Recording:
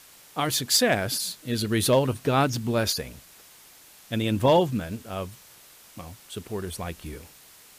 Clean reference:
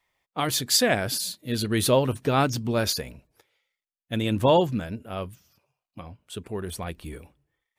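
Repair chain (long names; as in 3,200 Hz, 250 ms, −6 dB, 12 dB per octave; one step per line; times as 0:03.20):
clipped peaks rebuilt −11.5 dBFS
broadband denoise 30 dB, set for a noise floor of −52 dBFS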